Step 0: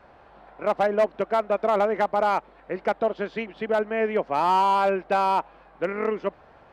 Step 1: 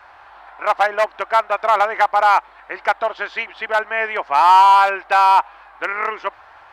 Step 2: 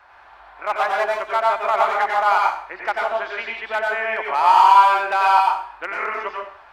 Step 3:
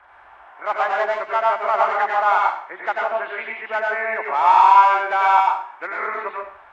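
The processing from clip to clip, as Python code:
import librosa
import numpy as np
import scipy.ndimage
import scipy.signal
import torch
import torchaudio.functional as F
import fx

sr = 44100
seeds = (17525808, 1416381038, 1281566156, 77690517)

y1 = fx.curve_eq(x, sr, hz=(110.0, 170.0, 330.0, 490.0, 860.0, 1600.0, 2600.0), db=(0, -19, -2, -4, 13, 15, 13))
y1 = y1 * 10.0 ** (-2.5 / 20.0)
y2 = fx.rev_plate(y1, sr, seeds[0], rt60_s=0.53, hf_ratio=0.95, predelay_ms=80, drr_db=-1.5)
y2 = y2 * 10.0 ** (-6.0 / 20.0)
y3 = fx.freq_compress(y2, sr, knee_hz=1900.0, ratio=1.5)
y3 = fx.hum_notches(y3, sr, base_hz=50, count=4)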